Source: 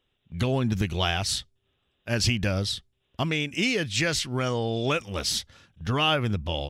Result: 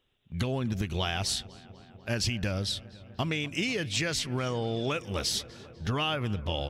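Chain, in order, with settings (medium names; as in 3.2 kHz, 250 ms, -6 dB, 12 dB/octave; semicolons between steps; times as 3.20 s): compression, threshold -26 dBFS, peak gain reduction 7.5 dB; filtered feedback delay 248 ms, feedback 83%, low-pass 2.9 kHz, level -20 dB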